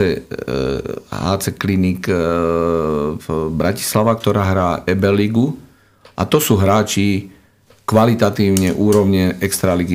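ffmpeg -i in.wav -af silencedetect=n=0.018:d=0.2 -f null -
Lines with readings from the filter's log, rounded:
silence_start: 5.65
silence_end: 6.05 | silence_duration: 0.41
silence_start: 7.34
silence_end: 7.70 | silence_duration: 0.36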